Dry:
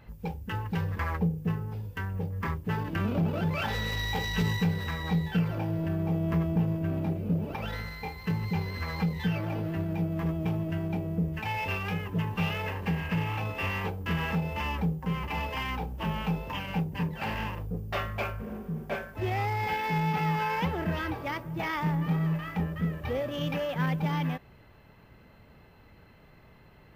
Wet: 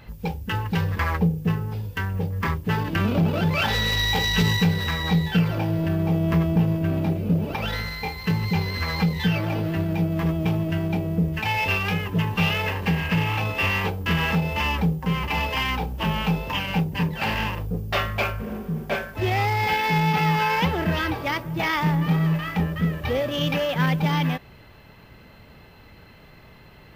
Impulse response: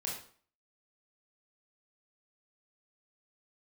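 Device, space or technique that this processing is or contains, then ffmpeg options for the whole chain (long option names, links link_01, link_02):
presence and air boost: -af "equalizer=frequency=4000:width_type=o:width=1.6:gain=5.5,highshelf=frequency=9100:gain=4,volume=6.5dB"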